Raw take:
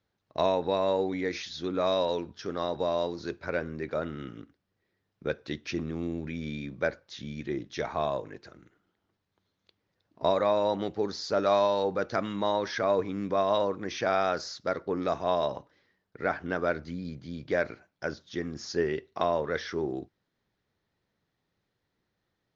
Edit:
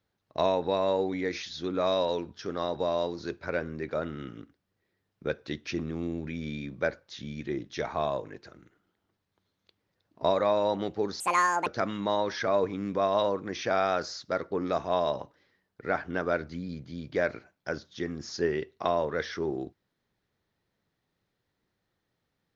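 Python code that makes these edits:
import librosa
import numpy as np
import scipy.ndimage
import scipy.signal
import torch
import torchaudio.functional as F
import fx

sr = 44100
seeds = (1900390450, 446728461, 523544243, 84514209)

y = fx.edit(x, sr, fx.speed_span(start_s=11.2, length_s=0.82, speed=1.77), tone=tone)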